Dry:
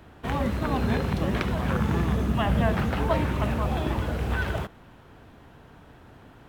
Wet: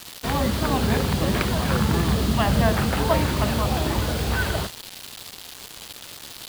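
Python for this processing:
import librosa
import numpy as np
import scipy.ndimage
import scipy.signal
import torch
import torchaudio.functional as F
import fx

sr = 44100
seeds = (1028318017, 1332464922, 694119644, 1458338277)

y = fx.dmg_noise_band(x, sr, seeds[0], low_hz=2800.0, high_hz=4900.0, level_db=-43.0)
y = fx.hum_notches(y, sr, base_hz=60, count=6)
y = fx.quant_dither(y, sr, seeds[1], bits=6, dither='none')
y = y * librosa.db_to_amplitude(4.0)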